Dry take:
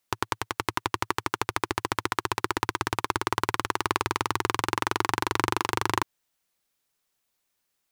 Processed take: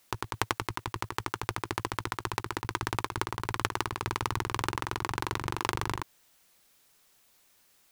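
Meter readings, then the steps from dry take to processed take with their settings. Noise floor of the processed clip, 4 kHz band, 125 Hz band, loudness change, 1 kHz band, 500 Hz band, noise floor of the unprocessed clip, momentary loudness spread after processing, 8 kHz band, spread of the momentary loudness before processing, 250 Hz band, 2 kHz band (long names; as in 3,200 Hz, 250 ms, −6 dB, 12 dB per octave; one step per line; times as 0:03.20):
−65 dBFS, −5.0 dB, −0.5 dB, −5.5 dB, −6.0 dB, −6.0 dB, −78 dBFS, 4 LU, −5.0 dB, 4 LU, −5.5 dB, −5.5 dB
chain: compressor whose output falls as the input rises −33 dBFS, ratio −0.5
level +4 dB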